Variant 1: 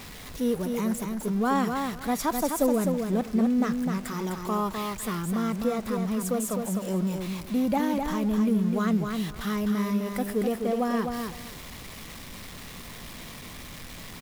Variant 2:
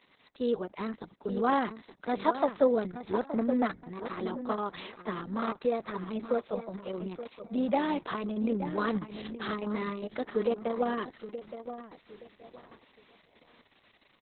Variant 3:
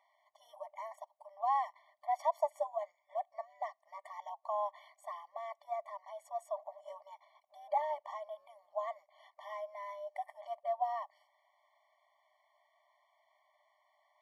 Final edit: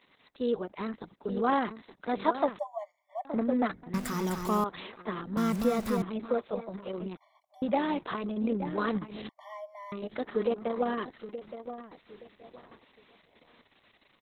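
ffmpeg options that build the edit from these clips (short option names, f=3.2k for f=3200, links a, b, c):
-filter_complex "[2:a]asplit=3[a][b][c];[0:a]asplit=2[d][e];[1:a]asplit=6[f][g][h][i][j][k];[f]atrim=end=2.592[l];[a]atrim=start=2.588:end=3.252[m];[g]atrim=start=3.248:end=3.942[n];[d]atrim=start=3.938:end=4.642[o];[h]atrim=start=4.638:end=5.372[p];[e]atrim=start=5.368:end=6.022[q];[i]atrim=start=6.018:end=7.172[r];[b]atrim=start=7.168:end=7.622[s];[j]atrim=start=7.618:end=9.292[t];[c]atrim=start=9.288:end=9.922[u];[k]atrim=start=9.918[v];[l][m]acrossfade=d=0.004:c1=hsin:c2=hsin[w];[w][n]acrossfade=d=0.004:c1=hsin:c2=hsin[x];[x][o]acrossfade=d=0.004:c1=hsin:c2=hsin[y];[y][p]acrossfade=d=0.004:c1=hsin:c2=hsin[z];[z][q]acrossfade=d=0.004:c1=hsin:c2=hsin[aa];[aa][r]acrossfade=d=0.004:c1=hsin:c2=hsin[ab];[ab][s]acrossfade=d=0.004:c1=hsin:c2=hsin[ac];[ac][t]acrossfade=d=0.004:c1=hsin:c2=hsin[ad];[ad][u]acrossfade=d=0.004:c1=hsin:c2=hsin[ae];[ae][v]acrossfade=d=0.004:c1=hsin:c2=hsin"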